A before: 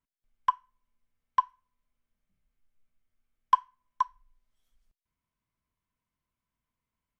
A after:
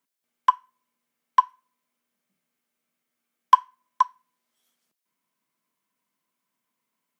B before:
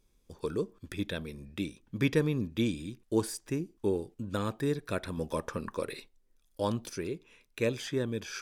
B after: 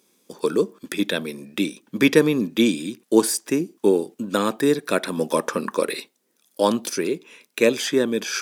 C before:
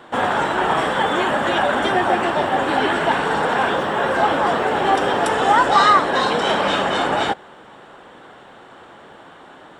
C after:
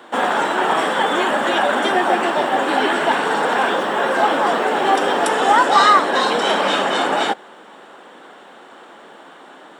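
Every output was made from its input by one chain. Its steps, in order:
HPF 200 Hz 24 dB/oct; high shelf 5900 Hz +5 dB; short-mantissa float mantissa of 6-bit; normalise peaks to -1.5 dBFS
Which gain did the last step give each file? +7.0, +12.5, +1.0 dB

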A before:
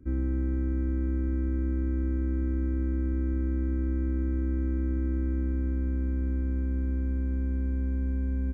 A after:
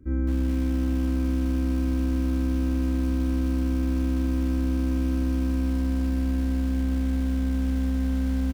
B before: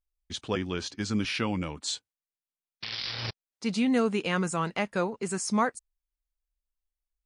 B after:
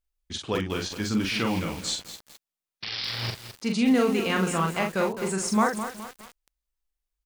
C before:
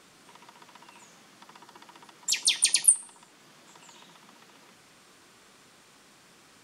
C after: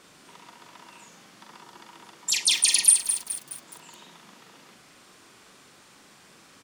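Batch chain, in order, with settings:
doubler 42 ms -4 dB; lo-fi delay 0.21 s, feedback 55%, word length 6-bit, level -9 dB; gain +1.5 dB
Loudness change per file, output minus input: +4.0, +3.5, +2.0 LU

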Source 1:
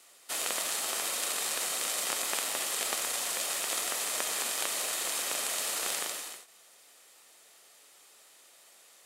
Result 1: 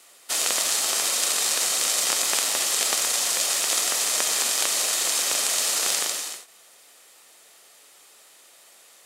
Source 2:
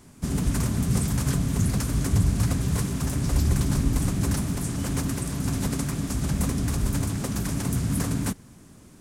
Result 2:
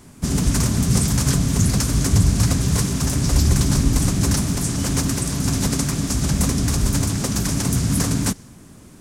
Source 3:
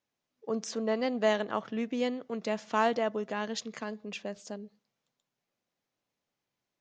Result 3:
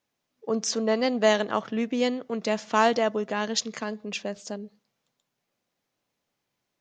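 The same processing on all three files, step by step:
dynamic EQ 5700 Hz, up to +7 dB, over -50 dBFS, Q 1; gain +5.5 dB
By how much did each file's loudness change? +9.0, +6.5, +6.0 LU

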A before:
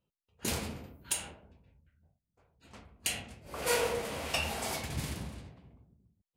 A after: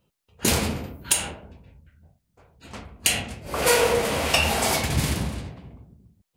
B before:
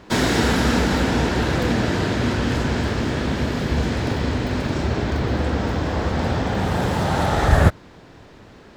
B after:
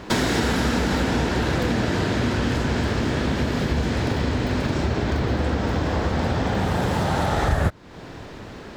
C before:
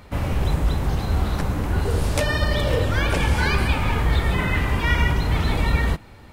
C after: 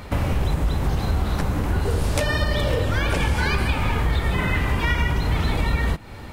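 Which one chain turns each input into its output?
compressor 3:1, threshold -29 dBFS; match loudness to -23 LUFS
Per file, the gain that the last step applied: +13.5, +7.0, +8.0 dB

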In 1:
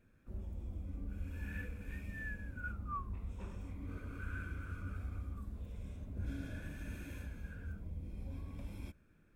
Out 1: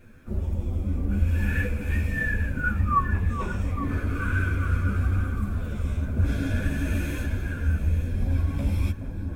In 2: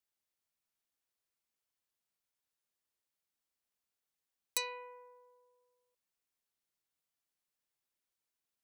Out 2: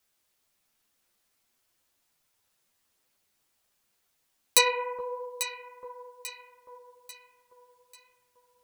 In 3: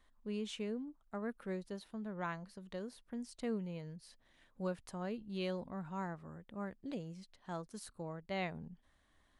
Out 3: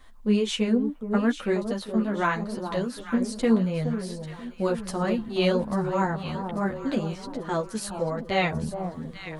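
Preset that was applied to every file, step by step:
echo with dull and thin repeats by turns 0.421 s, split 1100 Hz, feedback 65%, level -7.5 dB; chorus voices 4, 1.2 Hz, delay 11 ms, depth 3.3 ms; match loudness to -27 LUFS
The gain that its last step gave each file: +20.0, +18.0, +19.0 dB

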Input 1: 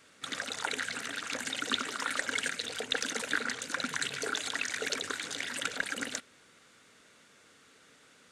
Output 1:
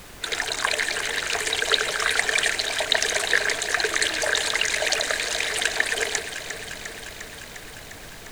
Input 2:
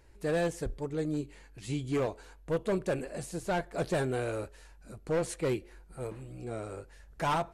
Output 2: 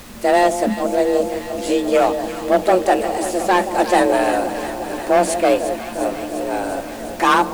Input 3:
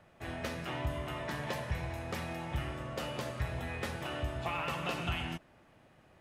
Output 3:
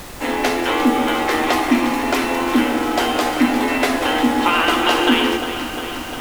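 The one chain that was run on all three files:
frequency shift +180 Hz; added noise pink -54 dBFS; echo with dull and thin repeats by turns 0.176 s, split 870 Hz, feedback 86%, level -9.5 dB; normalise peaks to -2 dBFS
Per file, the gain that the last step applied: +10.0, +15.0, +19.0 dB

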